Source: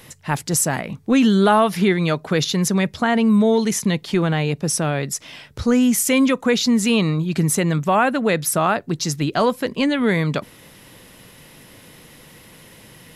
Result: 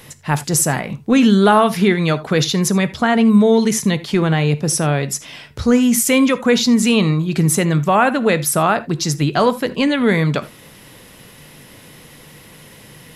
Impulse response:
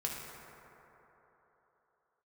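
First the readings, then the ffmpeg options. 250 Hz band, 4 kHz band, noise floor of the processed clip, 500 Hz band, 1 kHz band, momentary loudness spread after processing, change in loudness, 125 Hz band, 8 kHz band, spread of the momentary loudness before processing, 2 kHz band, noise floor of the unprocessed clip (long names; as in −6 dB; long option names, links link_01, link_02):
+3.0 dB, +3.0 dB, −43 dBFS, +3.0 dB, +3.0 dB, 8 LU, +3.0 dB, +4.0 dB, +3.0 dB, 8 LU, +3.0 dB, −47 dBFS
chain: -filter_complex "[0:a]asplit=2[link_01][link_02];[1:a]atrim=start_sample=2205,afade=type=out:start_time=0.14:duration=0.01,atrim=end_sample=6615[link_03];[link_02][link_03]afir=irnorm=-1:irlink=0,volume=-6.5dB[link_04];[link_01][link_04]amix=inputs=2:normalize=0"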